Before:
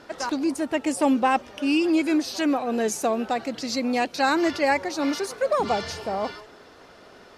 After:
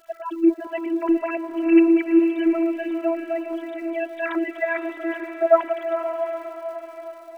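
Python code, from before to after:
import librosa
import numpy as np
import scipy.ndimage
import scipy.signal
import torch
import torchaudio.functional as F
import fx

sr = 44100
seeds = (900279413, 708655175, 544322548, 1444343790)

p1 = fx.sine_speech(x, sr)
p2 = fx.dmg_crackle(p1, sr, seeds[0], per_s=210.0, level_db=-46.0)
p3 = fx.robotise(p2, sr, hz=332.0)
p4 = p3 + fx.echo_diffused(p3, sr, ms=473, feedback_pct=55, wet_db=-7, dry=0)
y = F.gain(torch.from_numpy(p4), 3.0).numpy()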